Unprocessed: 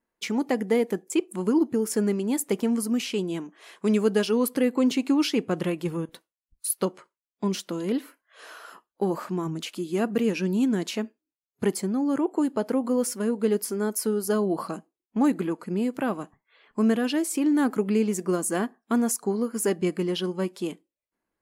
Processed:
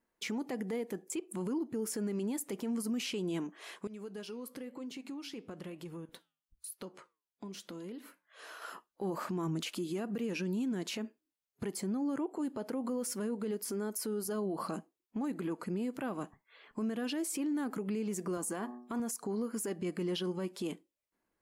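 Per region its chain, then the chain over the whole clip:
0:03.87–0:08.62: downward compressor 4 to 1, threshold −39 dBFS + flanger 1 Hz, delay 4.8 ms, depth 5 ms, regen −86%
0:18.37–0:19.00: hum removal 122.1 Hz, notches 10 + dynamic equaliser 970 Hz, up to +6 dB, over −44 dBFS, Q 2 + high-pass filter 75 Hz 24 dB per octave
whole clip: downward compressor, threshold −28 dBFS; brickwall limiter −28.5 dBFS

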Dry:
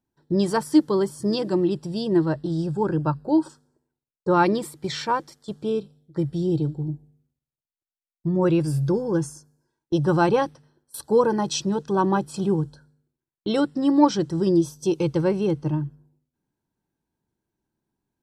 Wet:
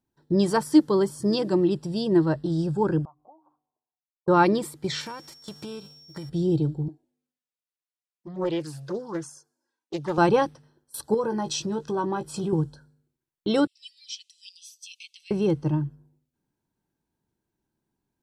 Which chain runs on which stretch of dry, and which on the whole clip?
0:03.05–0:04.28: mains-hum notches 60/120/180/240/300/360/420 Hz + downward compressor 10 to 1, threshold −32 dBFS + formant resonators in series a
0:05.00–0:06.28: spectral envelope flattened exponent 0.6 + downward compressor 10 to 1, threshold −33 dBFS + steady tone 5,500 Hz −49 dBFS
0:06.88–0:10.18: meter weighting curve A + flanger swept by the level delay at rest 4.1 ms, full sweep at −22 dBFS + highs frequency-modulated by the lows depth 0.31 ms
0:11.14–0:12.53: double-tracking delay 18 ms −8 dB + downward compressor 2.5 to 1, threshold −26 dBFS
0:13.67–0:15.31: Butterworth high-pass 2,400 Hz 72 dB per octave + high-shelf EQ 6,000 Hz −11 dB + comb filter 5.3 ms, depth 38%
whole clip: no processing

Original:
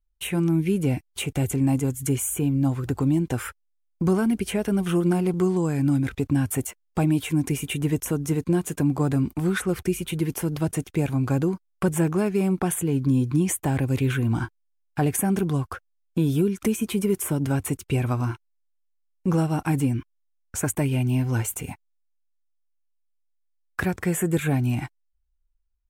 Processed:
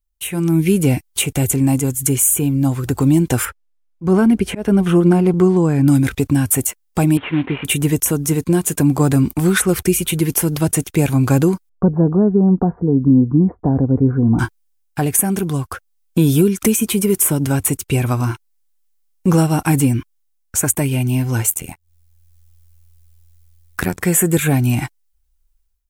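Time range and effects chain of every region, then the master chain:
0:03.45–0:05.88: low-pass filter 1,500 Hz 6 dB per octave + volume swells 148 ms
0:07.17–0:07.65: variable-slope delta modulation 16 kbit/s + low-shelf EQ 150 Hz −11 dB
0:11.69–0:14.39: Gaussian smoothing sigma 9.9 samples + comb filter 4.2 ms, depth 34%
0:21.50–0:24.01: upward compression, threshold −44 dBFS + amplitude modulation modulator 83 Hz, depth 80%
whole clip: high-shelf EQ 5,100 Hz +10 dB; automatic gain control gain up to 12 dB; level −1 dB

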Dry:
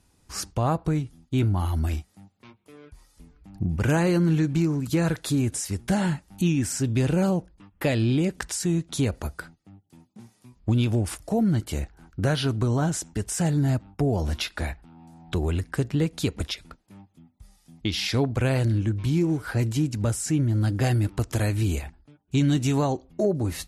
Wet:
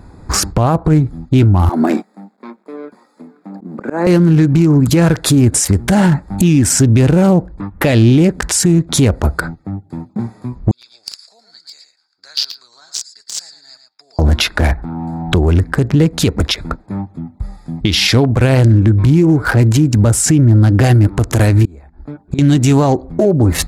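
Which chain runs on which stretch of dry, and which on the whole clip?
0:01.69–0:04.07: mu-law and A-law mismatch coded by A + elliptic high-pass filter 210 Hz, stop band 80 dB + volume swells 604 ms
0:10.71–0:14.19: four-pole ladder band-pass 5,000 Hz, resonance 80% + single-tap delay 114 ms −8 dB
0:21.65–0:22.39: parametric band 110 Hz −7.5 dB 0.76 octaves + gate with flip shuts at −30 dBFS, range −27 dB
whole clip: adaptive Wiener filter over 15 samples; downward compressor 5 to 1, threshold −33 dBFS; boost into a limiter +28.5 dB; level −2.5 dB

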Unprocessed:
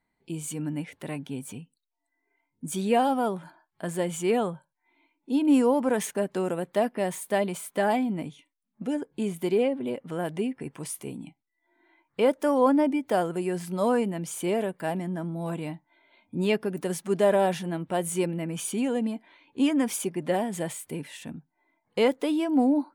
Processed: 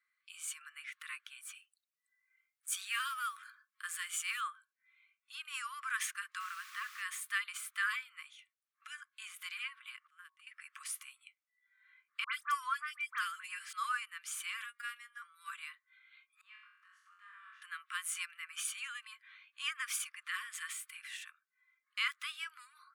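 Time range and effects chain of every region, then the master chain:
0:01.55–0:04.41: high-pass filter 720 Hz 6 dB per octave + high-shelf EQ 6,700 Hz +7 dB + noise that follows the level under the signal 30 dB
0:06.39–0:07.01: spectral tilt −3 dB per octave + background noise pink −47 dBFS
0:10.07–0:10.47: noise gate −28 dBFS, range −26 dB + hum removal 55.04 Hz, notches 20 + downward compressor, threshold −40 dBFS
0:12.24–0:13.73: comb filter 5.9 ms, depth 39% + all-pass dispersion highs, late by 90 ms, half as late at 1,700 Hz
0:14.64–0:15.22: phases set to zero 239 Hz + double-tracking delay 14 ms −12.5 dB
0:16.41–0:17.62: flutter between parallel walls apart 3.8 metres, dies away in 0.64 s + upward compression, threshold −23 dBFS + resonant band-pass 440 Hz, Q 4.1
whole clip: Chebyshev high-pass filter 1,100 Hz, order 10; high-shelf EQ 2,900 Hz −10.5 dB; level +4.5 dB

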